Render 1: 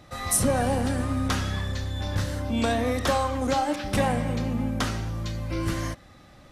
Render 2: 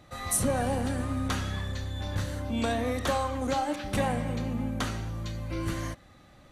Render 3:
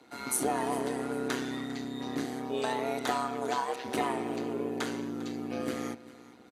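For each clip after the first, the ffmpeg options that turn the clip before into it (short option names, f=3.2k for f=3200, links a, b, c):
-af "bandreject=f=5.2k:w=9.2,volume=-4dB"
-af "afreqshift=180,aecho=1:1:400|800|1200:0.119|0.0404|0.0137,tremolo=f=130:d=0.667"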